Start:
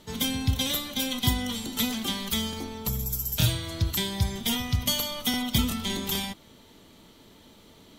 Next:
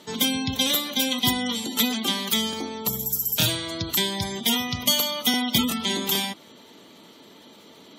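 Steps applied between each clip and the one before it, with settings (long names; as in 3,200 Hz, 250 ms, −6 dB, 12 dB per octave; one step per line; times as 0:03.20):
high-pass filter 220 Hz 12 dB per octave
gate on every frequency bin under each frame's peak −25 dB strong
level +6 dB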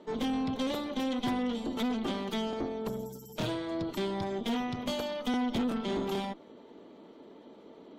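resonant band-pass 410 Hz, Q 0.93
tube saturation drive 31 dB, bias 0.65
level +4.5 dB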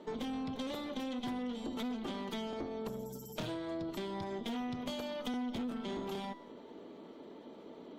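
tuned comb filter 82 Hz, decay 0.57 s, harmonics all, mix 50%
downward compressor 4 to 1, threshold −43 dBFS, peak gain reduction 11 dB
level +5.5 dB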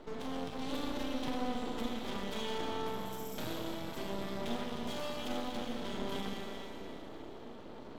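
four-comb reverb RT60 3.3 s, combs from 30 ms, DRR −0.5 dB
half-wave rectification
level +3.5 dB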